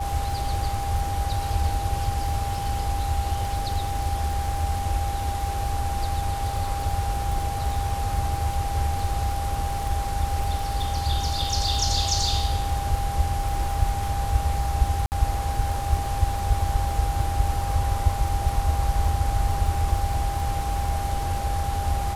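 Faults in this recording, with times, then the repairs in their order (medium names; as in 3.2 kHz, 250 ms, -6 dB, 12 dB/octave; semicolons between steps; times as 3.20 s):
crackle 50 per s -30 dBFS
whine 800 Hz -29 dBFS
15.06–15.12 s: dropout 59 ms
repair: de-click; band-stop 800 Hz, Q 30; interpolate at 15.06 s, 59 ms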